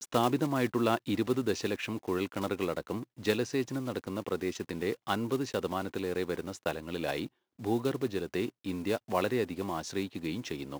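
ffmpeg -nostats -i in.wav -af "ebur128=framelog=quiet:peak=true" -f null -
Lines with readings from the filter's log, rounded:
Integrated loudness:
  I:         -33.0 LUFS
  Threshold: -43.0 LUFS
Loudness range:
  LRA:         2.6 LU
  Threshold: -53.6 LUFS
  LRA low:   -34.5 LUFS
  LRA high:  -31.9 LUFS
True peak:
  Peak:      -11.2 dBFS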